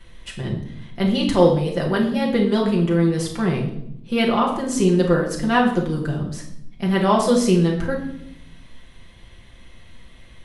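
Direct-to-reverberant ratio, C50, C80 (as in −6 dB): −2.5 dB, 6.0 dB, 10.0 dB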